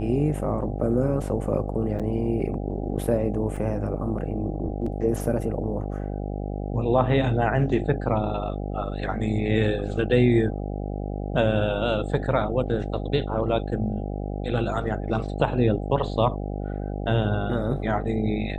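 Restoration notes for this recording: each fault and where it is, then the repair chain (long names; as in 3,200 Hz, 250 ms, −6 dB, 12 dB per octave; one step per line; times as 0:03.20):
mains buzz 50 Hz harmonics 16 −30 dBFS
0:01.99–0:02.00: drop-out 6.9 ms
0:03.56: drop-out 3.3 ms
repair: hum removal 50 Hz, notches 16
repair the gap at 0:01.99, 6.9 ms
repair the gap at 0:03.56, 3.3 ms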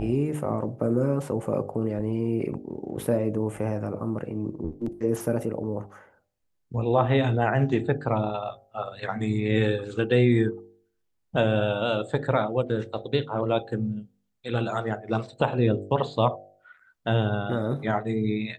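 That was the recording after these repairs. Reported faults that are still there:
none of them is left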